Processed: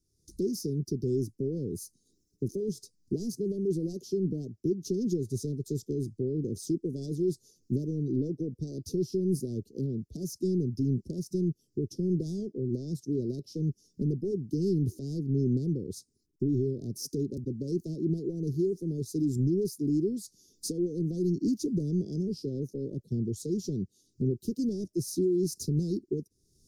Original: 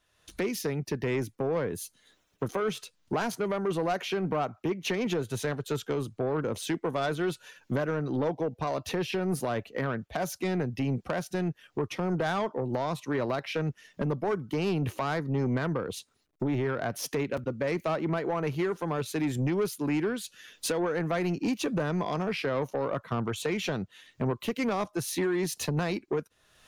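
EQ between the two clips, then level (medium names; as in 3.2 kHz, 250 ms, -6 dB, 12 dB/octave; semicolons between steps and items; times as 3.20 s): Chebyshev band-stop 390–5000 Hz, order 4; treble shelf 7.3 kHz -8 dB; +2.0 dB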